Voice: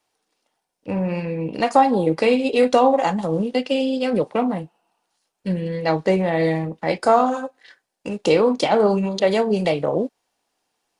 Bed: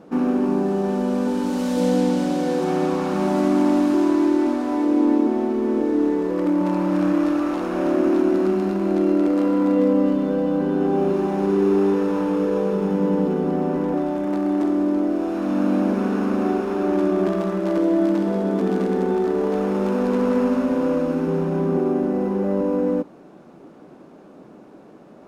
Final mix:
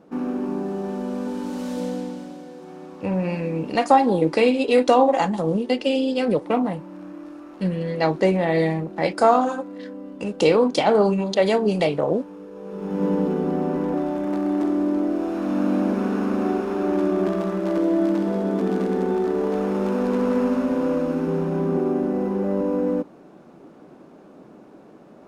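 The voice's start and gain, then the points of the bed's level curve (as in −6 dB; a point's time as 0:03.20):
2.15 s, −0.5 dB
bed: 0:01.73 −6 dB
0:02.52 −18.5 dB
0:12.53 −18.5 dB
0:13.04 −1.5 dB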